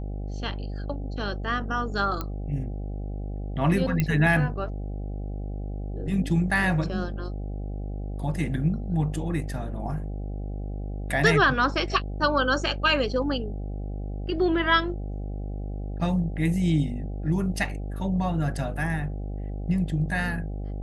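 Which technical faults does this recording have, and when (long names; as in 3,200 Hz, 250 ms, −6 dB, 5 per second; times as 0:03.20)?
mains buzz 50 Hz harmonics 16 −32 dBFS
0:02.21: click −16 dBFS
0:04.00: click −11 dBFS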